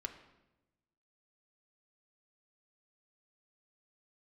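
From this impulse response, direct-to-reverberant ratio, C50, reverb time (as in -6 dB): 4.0 dB, 10.0 dB, 1.0 s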